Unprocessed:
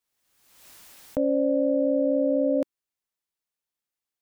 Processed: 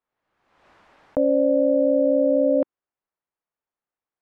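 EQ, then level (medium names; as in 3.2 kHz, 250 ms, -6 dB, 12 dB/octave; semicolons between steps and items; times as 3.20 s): low-pass 1.2 kHz 12 dB/octave; bass shelf 440 Hz -8.5 dB; +8.5 dB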